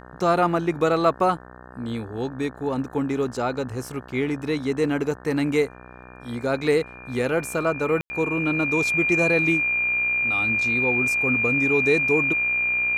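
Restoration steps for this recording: de-hum 62.1 Hz, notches 29; notch 2400 Hz, Q 30; room tone fill 8.01–8.1

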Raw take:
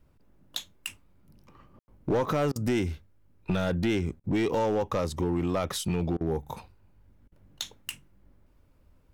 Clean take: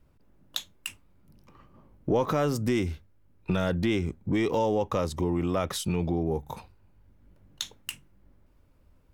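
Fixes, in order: clip repair -20.5 dBFS; room tone fill 1.79–1.88; interpolate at 2.52/4.2/6.17/7.28, 37 ms

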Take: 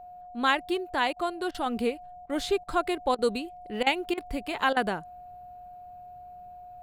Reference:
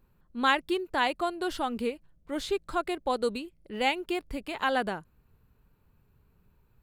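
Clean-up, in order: notch 720 Hz, Q 30; interpolate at 1.13/1.51/2.26/2.64/3.15/3.83/4.14/4.73, 34 ms; gain correction -3 dB, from 1.66

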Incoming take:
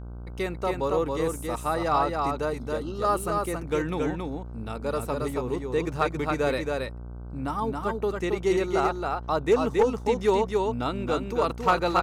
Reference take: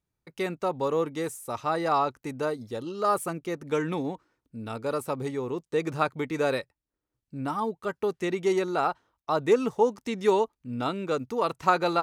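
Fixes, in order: clip repair -13 dBFS; de-hum 59.6 Hz, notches 26; inverse comb 0.274 s -3.5 dB

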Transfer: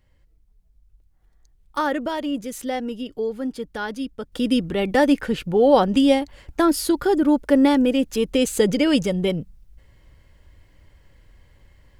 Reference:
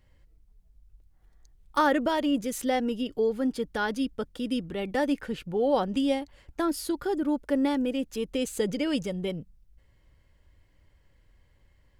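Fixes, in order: gain correction -9.5 dB, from 4.32

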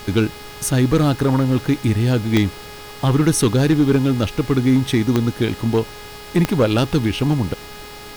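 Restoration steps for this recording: clip repair -8.5 dBFS; de-click; de-hum 416.5 Hz, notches 13; denoiser 27 dB, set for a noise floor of -36 dBFS

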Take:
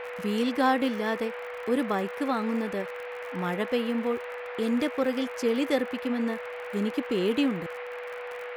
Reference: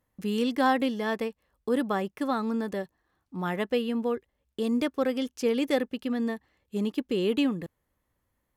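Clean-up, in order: de-click; notch 490 Hz, Q 30; noise print and reduce 30 dB

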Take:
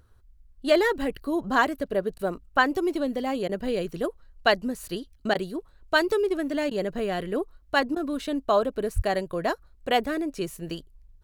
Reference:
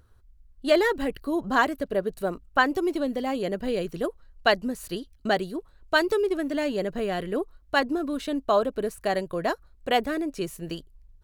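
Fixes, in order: de-plosive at 8.95; interpolate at 2.18/3.48/5.34/6.7/7.95, 10 ms

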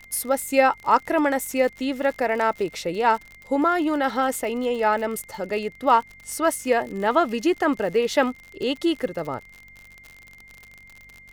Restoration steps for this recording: de-click; de-hum 47.7 Hz, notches 5; notch 2100 Hz, Q 30; expander -40 dBFS, range -21 dB

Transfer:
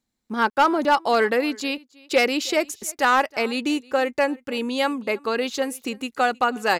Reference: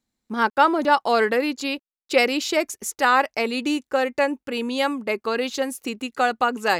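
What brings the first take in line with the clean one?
clip repair -10 dBFS; inverse comb 0.316 s -24 dB

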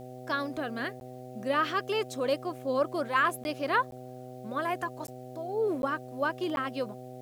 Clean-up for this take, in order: de-hum 126.6 Hz, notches 6; interpolate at 1/3.44/3.91/5.07/5.82/6.56, 11 ms; expander -37 dBFS, range -21 dB

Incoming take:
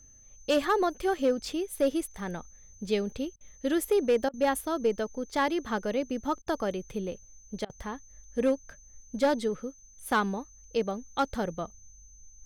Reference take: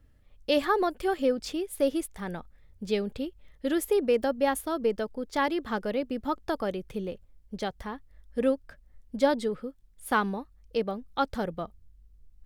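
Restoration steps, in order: clip repair -18 dBFS; notch 6200 Hz, Q 30; interpolate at 3.36/4.29/6.42/7.65, 45 ms

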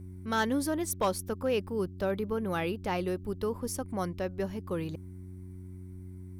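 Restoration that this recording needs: clip repair -20.5 dBFS; de-hum 92.2 Hz, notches 4

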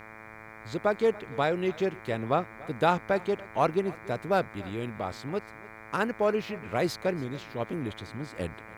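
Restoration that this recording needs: de-hum 109.5 Hz, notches 22; expander -39 dBFS, range -21 dB; inverse comb 0.286 s -21 dB

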